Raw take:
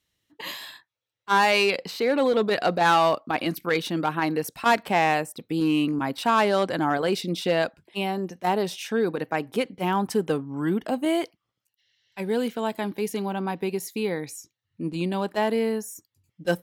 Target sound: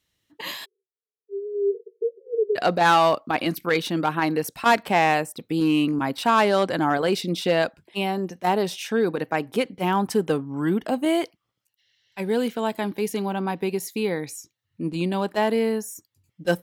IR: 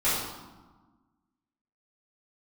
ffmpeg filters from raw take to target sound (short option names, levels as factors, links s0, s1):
-filter_complex "[0:a]asplit=3[s0][s1][s2];[s0]afade=t=out:st=0.64:d=0.02[s3];[s1]asuperpass=centerf=420:order=12:qfactor=4.3,afade=t=in:st=0.64:d=0.02,afade=t=out:st=2.55:d=0.02[s4];[s2]afade=t=in:st=2.55:d=0.02[s5];[s3][s4][s5]amix=inputs=3:normalize=0,volume=1.26"